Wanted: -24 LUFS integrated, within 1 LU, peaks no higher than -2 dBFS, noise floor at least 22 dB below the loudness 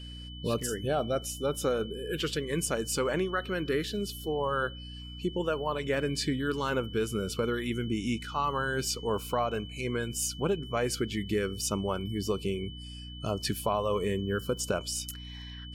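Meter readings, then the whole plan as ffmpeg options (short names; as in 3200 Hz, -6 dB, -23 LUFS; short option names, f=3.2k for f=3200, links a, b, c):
hum 60 Hz; harmonics up to 300 Hz; hum level -41 dBFS; steady tone 3000 Hz; tone level -46 dBFS; loudness -31.5 LUFS; peak -17.0 dBFS; loudness target -24.0 LUFS
-> -af "bandreject=f=60:t=h:w=6,bandreject=f=120:t=h:w=6,bandreject=f=180:t=h:w=6,bandreject=f=240:t=h:w=6,bandreject=f=300:t=h:w=6"
-af "bandreject=f=3k:w=30"
-af "volume=7.5dB"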